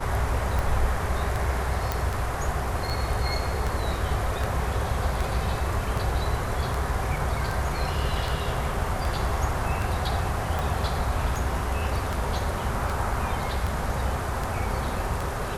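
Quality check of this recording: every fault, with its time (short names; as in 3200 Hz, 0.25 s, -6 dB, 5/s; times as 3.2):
tick 78 rpm
1.92 pop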